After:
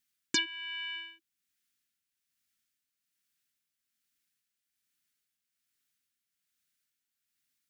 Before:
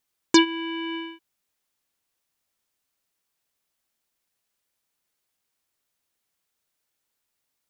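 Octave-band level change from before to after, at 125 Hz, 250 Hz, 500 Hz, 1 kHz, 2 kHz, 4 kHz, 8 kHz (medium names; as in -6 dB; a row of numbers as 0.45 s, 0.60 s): no reading, -22.5 dB, -23.0 dB, -21.5 dB, -6.0 dB, -6.5 dB, -7.0 dB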